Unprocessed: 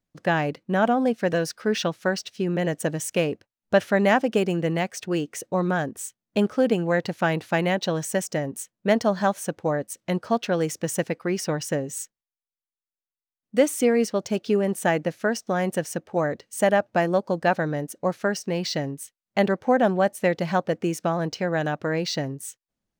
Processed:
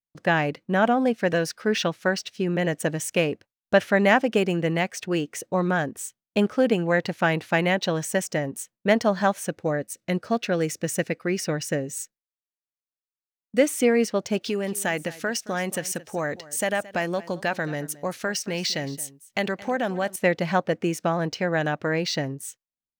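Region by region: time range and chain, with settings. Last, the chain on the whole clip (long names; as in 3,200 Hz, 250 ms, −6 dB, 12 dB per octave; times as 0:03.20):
0:09.48–0:13.67: notch filter 3,200 Hz, Q 13 + de-essing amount 30% + parametric band 940 Hz −7.5 dB 0.61 octaves
0:14.41–0:20.16: high-shelf EQ 2,100 Hz +9.5 dB + downward compressor 2 to 1, threshold −27 dBFS + single-tap delay 221 ms −18.5 dB
whole clip: noise gate with hold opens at −44 dBFS; dynamic equaliser 2,200 Hz, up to +4 dB, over −42 dBFS, Q 1.2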